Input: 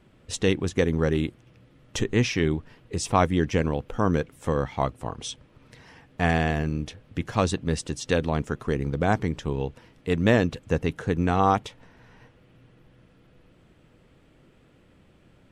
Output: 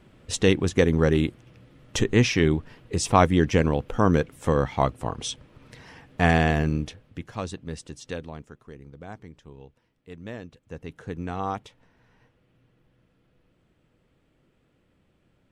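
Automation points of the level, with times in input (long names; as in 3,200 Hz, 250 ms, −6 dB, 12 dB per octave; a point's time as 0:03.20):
0:06.75 +3 dB
0:07.28 −9 dB
0:08.07 −9 dB
0:08.61 −18 dB
0:10.56 −18 dB
0:11.05 −9 dB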